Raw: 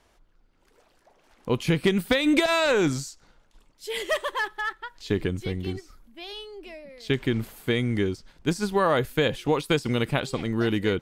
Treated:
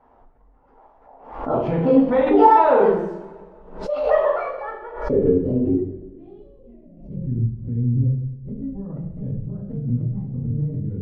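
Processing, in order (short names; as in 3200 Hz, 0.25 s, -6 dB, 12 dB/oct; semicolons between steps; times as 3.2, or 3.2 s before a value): trilling pitch shifter +5 st, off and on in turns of 0.256 s; limiter -16 dBFS, peak gain reduction 7.5 dB; notches 60/120 Hz; low-pass sweep 880 Hz -> 130 Hz, 4.06–7.27; two-slope reverb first 0.67 s, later 2 s, from -18 dB, DRR -9.5 dB; backwards sustainer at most 85 dB/s; gain -2 dB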